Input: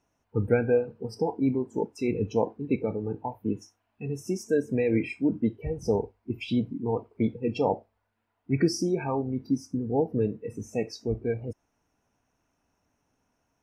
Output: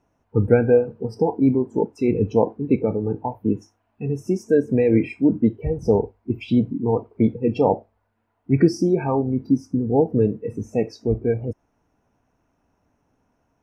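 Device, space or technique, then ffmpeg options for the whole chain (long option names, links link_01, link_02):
through cloth: -af "highshelf=frequency=2100:gain=-12,volume=8dB"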